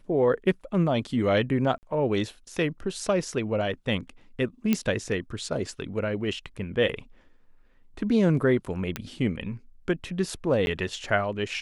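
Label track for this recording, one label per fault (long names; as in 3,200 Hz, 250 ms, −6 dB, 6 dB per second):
1.780000	1.830000	drop-out 49 ms
4.730000	4.730000	click −10 dBFS
8.960000	8.960000	click −13 dBFS
10.660000	10.670000	drop-out 11 ms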